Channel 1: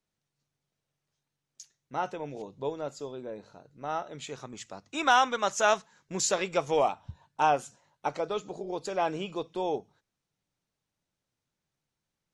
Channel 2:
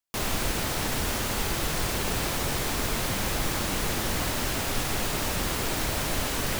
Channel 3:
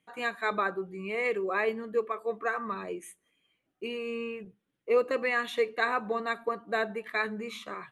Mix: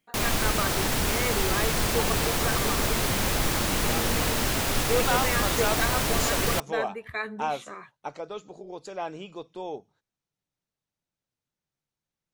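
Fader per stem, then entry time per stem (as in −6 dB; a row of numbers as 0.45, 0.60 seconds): −5.0, +2.5, −2.0 decibels; 0.00, 0.00, 0.00 seconds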